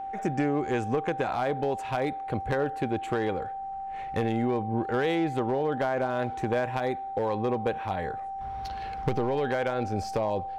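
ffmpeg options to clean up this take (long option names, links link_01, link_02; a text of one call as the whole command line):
ffmpeg -i in.wav -af "bandreject=frequency=780:width=30" out.wav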